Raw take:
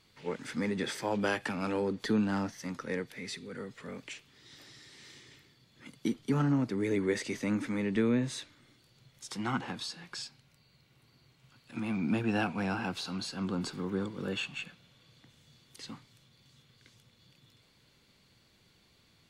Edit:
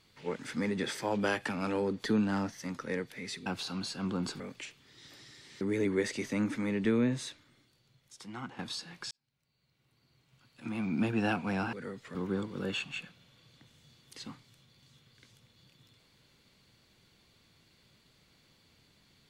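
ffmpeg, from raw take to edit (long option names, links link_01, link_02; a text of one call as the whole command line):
ffmpeg -i in.wav -filter_complex "[0:a]asplit=8[link_01][link_02][link_03][link_04][link_05][link_06][link_07][link_08];[link_01]atrim=end=3.462[link_09];[link_02]atrim=start=12.838:end=13.782[link_10];[link_03]atrim=start=3.878:end=5.092[link_11];[link_04]atrim=start=6.718:end=9.7,asetpts=PTS-STARTPTS,afade=type=out:start_time=1.502:duration=1.48:curve=qua:silence=0.334965[link_12];[link_05]atrim=start=9.7:end=10.22,asetpts=PTS-STARTPTS,afade=type=in:duration=0.004:curve=hsin:silence=0.334965,afade=type=out:start_time=0.516:duration=0.004:curve=hsin[link_13];[link_06]atrim=start=10.22:end=12.842,asetpts=PTS-STARTPTS,afade=type=in:duration=1.94[link_14];[link_07]atrim=start=3.458:end=3.882[link_15];[link_08]atrim=start=13.778[link_16];[link_09][link_10]acrossfade=duration=0.004:curve1=hsin:curve2=hsin[link_17];[link_17][link_11]acrossfade=duration=0.004:curve1=hsin:curve2=hsin[link_18];[link_12][link_13][link_14]concat=n=3:v=0:a=1[link_19];[link_18][link_19]acrossfade=duration=0.004:curve1=hsin:curve2=hsin[link_20];[link_20][link_15]acrossfade=duration=0.004:curve1=hsin:curve2=hsin[link_21];[link_21][link_16]acrossfade=duration=0.004:curve1=hsin:curve2=hsin" out.wav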